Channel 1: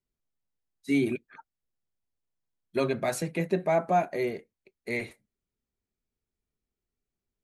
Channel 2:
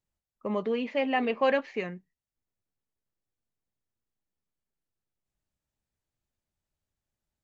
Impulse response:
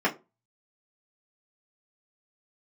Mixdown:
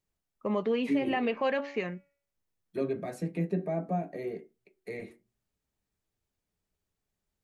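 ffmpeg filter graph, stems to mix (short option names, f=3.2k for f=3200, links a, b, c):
-filter_complex "[0:a]acrossover=split=450[a][b];[b]acompressor=threshold=-50dB:ratio=2[c];[a][c]amix=inputs=2:normalize=0,volume=-5.5dB,asplit=2[d][e];[e]volume=-13.5dB[f];[1:a]bandreject=f=282.5:t=h:w=4,bandreject=f=565:t=h:w=4,bandreject=f=847.5:t=h:w=4,bandreject=f=1.13k:t=h:w=4,bandreject=f=1.4125k:t=h:w=4,bandreject=f=1.695k:t=h:w=4,bandreject=f=1.9775k:t=h:w=4,bandreject=f=2.26k:t=h:w=4,bandreject=f=2.5425k:t=h:w=4,bandreject=f=2.825k:t=h:w=4,bandreject=f=3.1075k:t=h:w=4,volume=1dB[g];[2:a]atrim=start_sample=2205[h];[f][h]afir=irnorm=-1:irlink=0[i];[d][g][i]amix=inputs=3:normalize=0,alimiter=limit=-19.5dB:level=0:latency=1:release=89"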